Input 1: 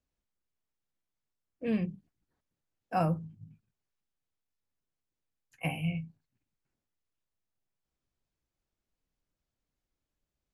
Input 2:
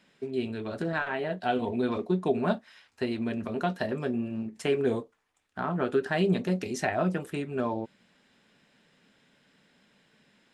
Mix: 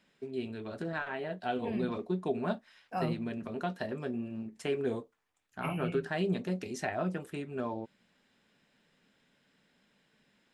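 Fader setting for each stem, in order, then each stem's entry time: -5.5, -6.0 dB; 0.00, 0.00 s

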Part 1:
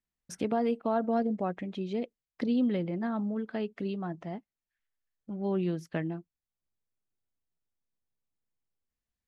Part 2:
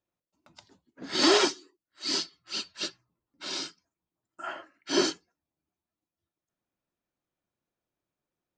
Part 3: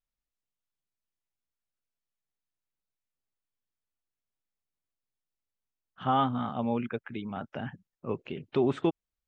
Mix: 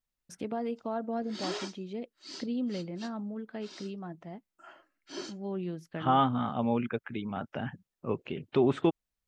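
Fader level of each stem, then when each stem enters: -5.5, -15.5, +1.0 dB; 0.00, 0.20, 0.00 s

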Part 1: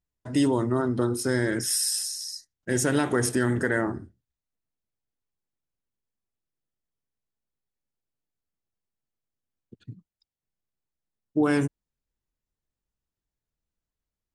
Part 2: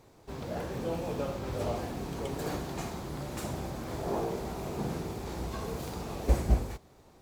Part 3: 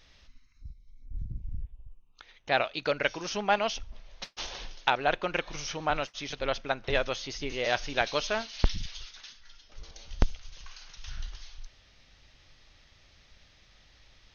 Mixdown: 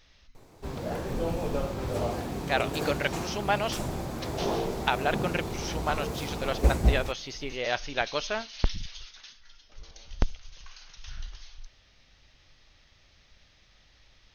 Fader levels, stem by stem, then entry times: off, +3.0 dB, -1.0 dB; off, 0.35 s, 0.00 s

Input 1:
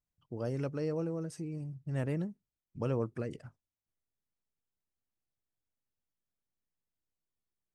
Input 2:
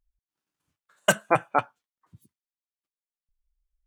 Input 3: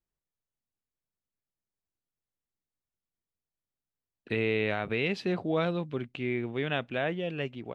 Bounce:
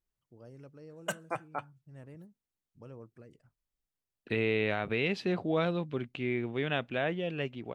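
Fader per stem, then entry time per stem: -16.0, -14.5, -1.0 dB; 0.00, 0.00, 0.00 s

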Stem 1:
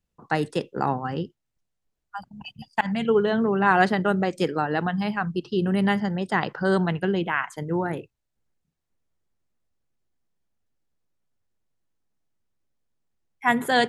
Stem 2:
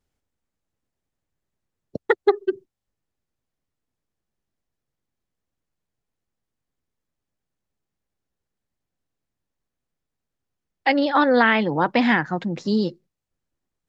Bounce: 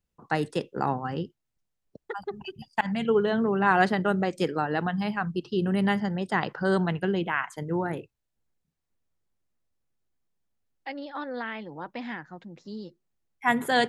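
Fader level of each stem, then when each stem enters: -2.5, -17.5 dB; 0.00, 0.00 s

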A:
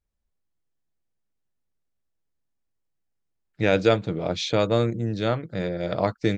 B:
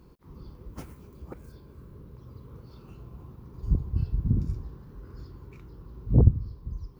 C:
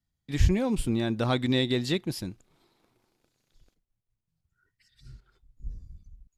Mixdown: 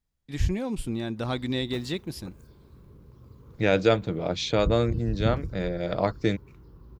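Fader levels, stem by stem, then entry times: -1.5, -4.0, -3.5 dB; 0.00, 0.95, 0.00 s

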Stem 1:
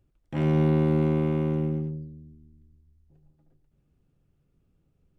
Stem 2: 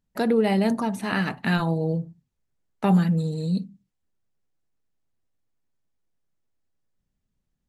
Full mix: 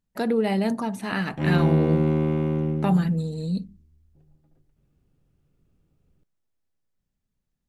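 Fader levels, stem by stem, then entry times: +1.5, -2.0 dB; 1.05, 0.00 s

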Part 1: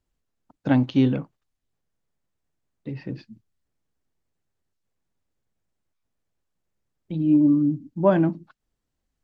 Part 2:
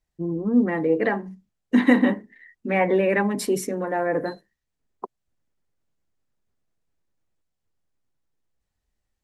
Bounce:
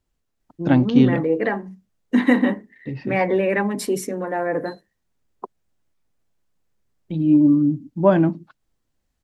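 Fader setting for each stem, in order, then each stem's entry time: +3.0, +0.5 dB; 0.00, 0.40 s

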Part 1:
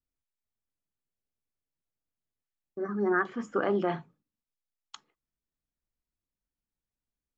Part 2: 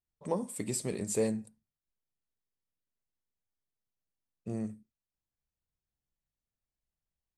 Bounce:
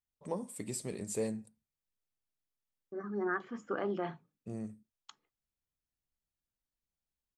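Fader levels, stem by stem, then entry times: -7.5, -5.0 dB; 0.15, 0.00 s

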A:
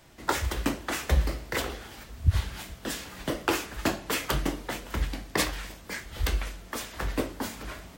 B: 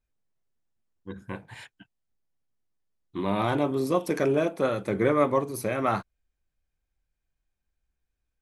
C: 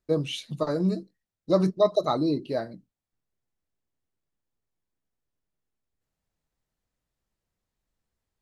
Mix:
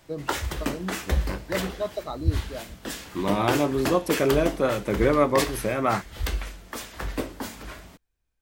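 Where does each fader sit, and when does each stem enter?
-0.5, +2.0, -8.5 dB; 0.00, 0.00, 0.00 s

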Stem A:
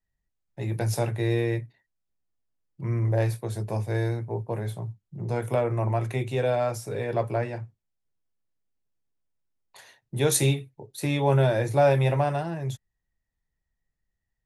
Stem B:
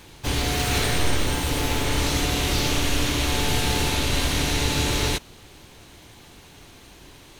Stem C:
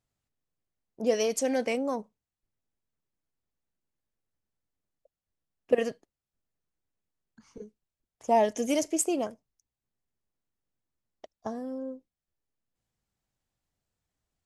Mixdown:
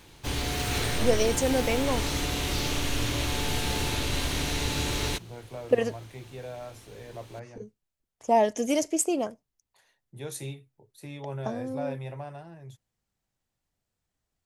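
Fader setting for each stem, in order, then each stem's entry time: -15.0, -6.0, +1.5 dB; 0.00, 0.00, 0.00 s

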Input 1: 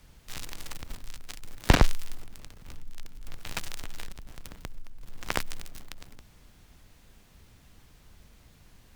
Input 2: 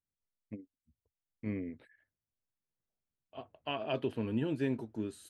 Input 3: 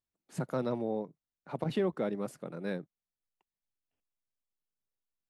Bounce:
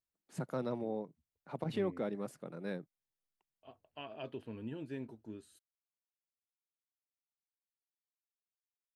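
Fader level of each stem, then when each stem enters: off, -10.0 dB, -4.5 dB; off, 0.30 s, 0.00 s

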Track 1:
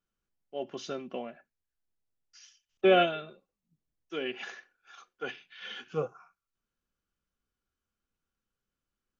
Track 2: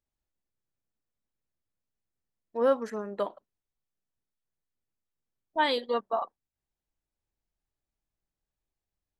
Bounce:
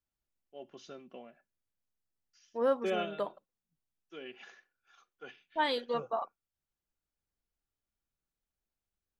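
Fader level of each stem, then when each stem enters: -11.5, -4.5 dB; 0.00, 0.00 s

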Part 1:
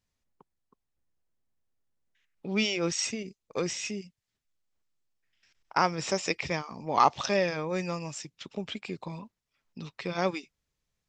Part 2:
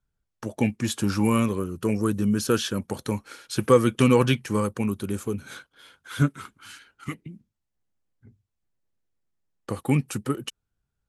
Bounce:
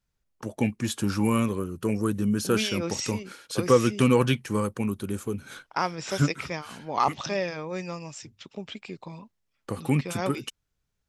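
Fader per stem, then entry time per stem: -2.0, -2.0 dB; 0.00, 0.00 s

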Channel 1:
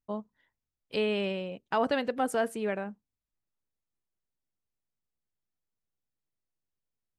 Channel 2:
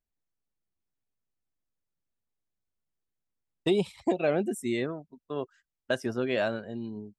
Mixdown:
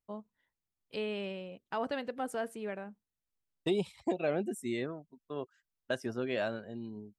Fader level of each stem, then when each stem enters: -7.5, -5.5 dB; 0.00, 0.00 s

